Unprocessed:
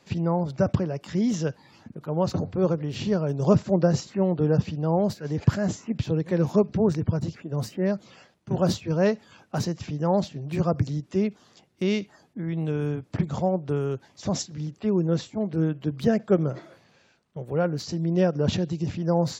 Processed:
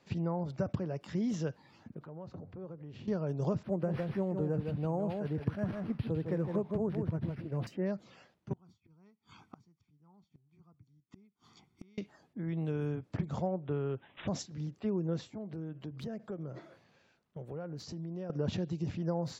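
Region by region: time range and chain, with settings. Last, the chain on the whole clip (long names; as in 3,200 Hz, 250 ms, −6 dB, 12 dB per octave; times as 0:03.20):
0:02.00–0:03.08: low-pass filter 1,800 Hz 6 dB per octave + downward compressor 2.5 to 1, threshold −42 dBFS + one half of a high-frequency compander encoder only
0:03.63–0:07.67: single-tap delay 157 ms −7 dB + linearly interpolated sample-rate reduction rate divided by 6×
0:08.53–0:11.98: comb filter 0.9 ms, depth 86% + gate with flip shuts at −26 dBFS, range −35 dB
0:13.47–0:14.28: bad sample-rate conversion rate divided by 6×, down none, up filtered + one half of a high-frequency compander encoder only
0:15.28–0:18.30: dynamic equaliser 2,400 Hz, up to −3 dB, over −42 dBFS, Q 0.76 + downward compressor 4 to 1, threshold −32 dBFS
whole clip: high-shelf EQ 5,500 Hz −8 dB; downward compressor, threshold −22 dBFS; level −6.5 dB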